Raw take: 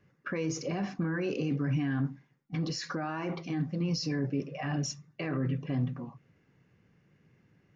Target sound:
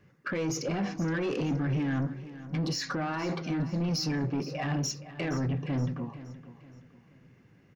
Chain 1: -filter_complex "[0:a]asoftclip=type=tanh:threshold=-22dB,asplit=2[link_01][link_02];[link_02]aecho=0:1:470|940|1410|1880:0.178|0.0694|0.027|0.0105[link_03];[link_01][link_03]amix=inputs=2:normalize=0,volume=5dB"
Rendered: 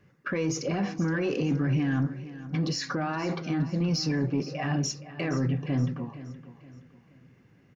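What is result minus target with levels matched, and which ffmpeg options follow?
soft clipping: distortion −11 dB
-filter_complex "[0:a]asoftclip=type=tanh:threshold=-30dB,asplit=2[link_01][link_02];[link_02]aecho=0:1:470|940|1410|1880:0.178|0.0694|0.027|0.0105[link_03];[link_01][link_03]amix=inputs=2:normalize=0,volume=5dB"

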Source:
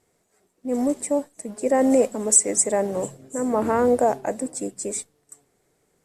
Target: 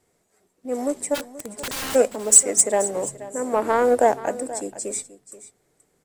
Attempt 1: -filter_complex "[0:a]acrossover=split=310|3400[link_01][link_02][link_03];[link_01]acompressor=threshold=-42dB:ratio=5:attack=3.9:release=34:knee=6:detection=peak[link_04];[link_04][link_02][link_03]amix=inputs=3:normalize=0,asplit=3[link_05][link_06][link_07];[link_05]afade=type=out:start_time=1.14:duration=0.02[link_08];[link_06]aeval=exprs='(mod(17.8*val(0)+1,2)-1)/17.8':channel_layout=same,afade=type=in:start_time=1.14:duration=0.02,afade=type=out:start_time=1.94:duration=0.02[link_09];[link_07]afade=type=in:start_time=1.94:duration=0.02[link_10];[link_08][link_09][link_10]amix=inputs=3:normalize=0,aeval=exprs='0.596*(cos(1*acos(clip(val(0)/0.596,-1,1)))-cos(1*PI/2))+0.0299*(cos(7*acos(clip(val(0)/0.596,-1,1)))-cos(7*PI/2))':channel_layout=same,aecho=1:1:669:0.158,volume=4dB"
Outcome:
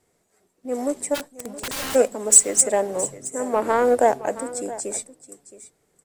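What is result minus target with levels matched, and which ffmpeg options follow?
echo 189 ms late
-filter_complex "[0:a]acrossover=split=310|3400[link_01][link_02][link_03];[link_01]acompressor=threshold=-42dB:ratio=5:attack=3.9:release=34:knee=6:detection=peak[link_04];[link_04][link_02][link_03]amix=inputs=3:normalize=0,asplit=3[link_05][link_06][link_07];[link_05]afade=type=out:start_time=1.14:duration=0.02[link_08];[link_06]aeval=exprs='(mod(17.8*val(0)+1,2)-1)/17.8':channel_layout=same,afade=type=in:start_time=1.14:duration=0.02,afade=type=out:start_time=1.94:duration=0.02[link_09];[link_07]afade=type=in:start_time=1.94:duration=0.02[link_10];[link_08][link_09][link_10]amix=inputs=3:normalize=0,aeval=exprs='0.596*(cos(1*acos(clip(val(0)/0.596,-1,1)))-cos(1*PI/2))+0.0299*(cos(7*acos(clip(val(0)/0.596,-1,1)))-cos(7*PI/2))':channel_layout=same,aecho=1:1:480:0.158,volume=4dB"

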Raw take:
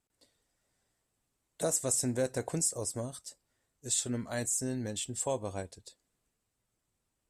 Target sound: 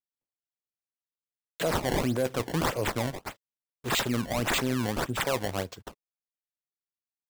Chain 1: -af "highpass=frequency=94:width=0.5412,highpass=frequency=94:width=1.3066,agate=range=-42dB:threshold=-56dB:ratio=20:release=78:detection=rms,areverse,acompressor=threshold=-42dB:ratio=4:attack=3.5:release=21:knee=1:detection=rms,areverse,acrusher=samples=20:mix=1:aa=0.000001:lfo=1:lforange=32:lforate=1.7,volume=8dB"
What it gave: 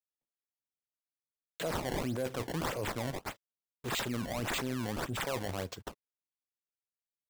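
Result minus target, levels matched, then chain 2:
downward compressor: peak gain reduction +7.5 dB
-af "highpass=frequency=94:width=0.5412,highpass=frequency=94:width=1.3066,agate=range=-42dB:threshold=-56dB:ratio=20:release=78:detection=rms,areverse,acompressor=threshold=-32dB:ratio=4:attack=3.5:release=21:knee=1:detection=rms,areverse,acrusher=samples=20:mix=1:aa=0.000001:lfo=1:lforange=32:lforate=1.7,volume=8dB"

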